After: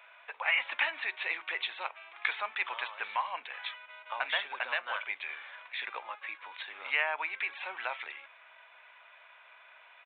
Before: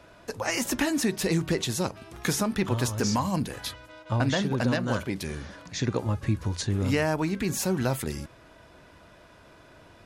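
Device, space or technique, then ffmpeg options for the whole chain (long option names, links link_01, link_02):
musical greeting card: -af "aresample=8000,aresample=44100,highpass=frequency=810:width=0.5412,highpass=frequency=810:width=1.3066,equalizer=frequency=2300:width_type=o:width=0.43:gain=9.5,volume=-1.5dB"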